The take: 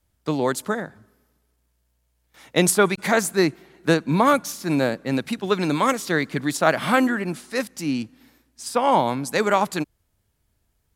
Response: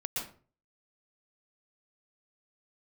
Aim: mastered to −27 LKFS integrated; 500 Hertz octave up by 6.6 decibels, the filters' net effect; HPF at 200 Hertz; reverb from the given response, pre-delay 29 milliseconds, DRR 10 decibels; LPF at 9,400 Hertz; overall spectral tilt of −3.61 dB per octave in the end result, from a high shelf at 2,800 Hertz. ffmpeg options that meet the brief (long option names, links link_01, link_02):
-filter_complex "[0:a]highpass=200,lowpass=9400,equalizer=frequency=500:width_type=o:gain=8,highshelf=frequency=2800:gain=5.5,asplit=2[link_01][link_02];[1:a]atrim=start_sample=2205,adelay=29[link_03];[link_02][link_03]afir=irnorm=-1:irlink=0,volume=-13dB[link_04];[link_01][link_04]amix=inputs=2:normalize=0,volume=-9dB"